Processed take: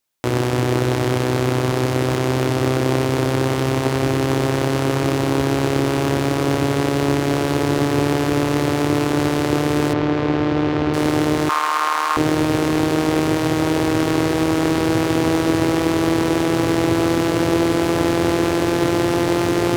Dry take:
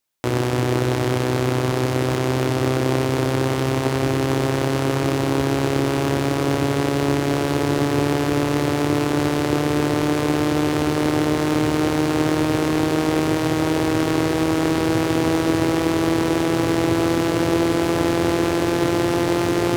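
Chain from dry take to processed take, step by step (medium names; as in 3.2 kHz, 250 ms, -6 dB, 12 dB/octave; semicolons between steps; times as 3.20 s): 9.93–10.94 s: distance through air 200 m; 11.49–12.17 s: resonant high-pass 1.1 kHz, resonance Q 5.7; trim +1.5 dB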